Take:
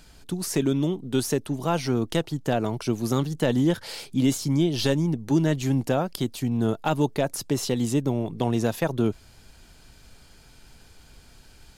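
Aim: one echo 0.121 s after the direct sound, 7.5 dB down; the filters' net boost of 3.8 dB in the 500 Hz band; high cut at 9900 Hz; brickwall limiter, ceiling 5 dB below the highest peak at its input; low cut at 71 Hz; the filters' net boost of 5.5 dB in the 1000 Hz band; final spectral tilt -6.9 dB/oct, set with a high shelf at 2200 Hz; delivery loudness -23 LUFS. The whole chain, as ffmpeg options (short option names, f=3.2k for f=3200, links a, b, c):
-af "highpass=71,lowpass=9.9k,equalizer=f=500:t=o:g=3.5,equalizer=f=1k:t=o:g=7.5,highshelf=f=2.2k:g=-7.5,alimiter=limit=-12.5dB:level=0:latency=1,aecho=1:1:121:0.422,volume=1.5dB"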